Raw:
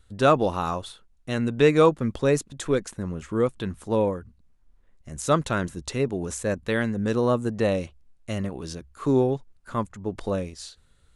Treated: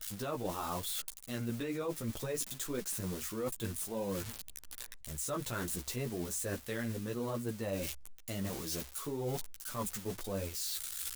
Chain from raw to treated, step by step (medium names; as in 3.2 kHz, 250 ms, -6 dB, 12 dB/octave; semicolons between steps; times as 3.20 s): zero-crossing glitches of -22.5 dBFS; peak limiter -15.5 dBFS, peak gain reduction 9 dB; chorus voices 4, 0.85 Hz, delay 13 ms, depth 4.5 ms; reverse; compression 6:1, threshold -38 dBFS, peak gain reduction 15 dB; reverse; trim +3 dB